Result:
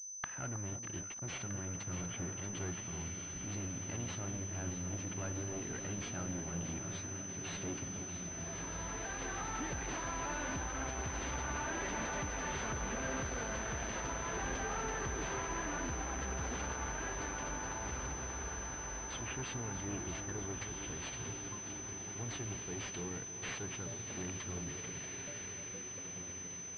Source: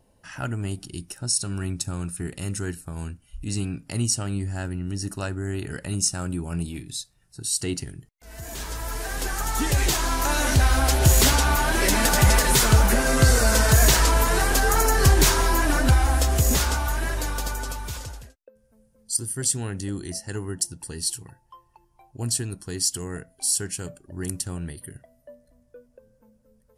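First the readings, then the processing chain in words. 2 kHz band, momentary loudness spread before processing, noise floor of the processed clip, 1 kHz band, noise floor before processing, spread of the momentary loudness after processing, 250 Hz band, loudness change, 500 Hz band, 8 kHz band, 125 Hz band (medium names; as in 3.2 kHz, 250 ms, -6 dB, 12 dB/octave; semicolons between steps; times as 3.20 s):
-14.5 dB, 17 LU, -46 dBFS, -14.5 dB, -63 dBFS, 4 LU, -13.5 dB, -17.0 dB, -14.5 dB, -12.5 dB, -18.0 dB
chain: compression, threshold -20 dBFS, peak gain reduction 9 dB; high-pass 48 Hz 24 dB/octave; echo that smears into a reverb 1764 ms, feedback 45%, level -9 dB; waveshaping leveller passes 5; inverted gate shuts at -23 dBFS, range -29 dB; small samples zeroed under -54.5 dBFS; echo whose repeats swap between lows and highs 317 ms, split 1.1 kHz, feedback 80%, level -8 dB; saturation -31 dBFS, distortion -30 dB; power-law waveshaper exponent 1.4; bass shelf 88 Hz -7.5 dB; class-D stage that switches slowly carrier 6.1 kHz; trim +9 dB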